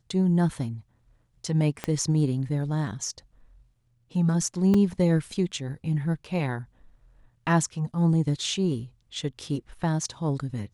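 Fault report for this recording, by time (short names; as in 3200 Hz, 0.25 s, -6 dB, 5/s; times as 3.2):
1.84 pop -14 dBFS
4.74 gap 3.6 ms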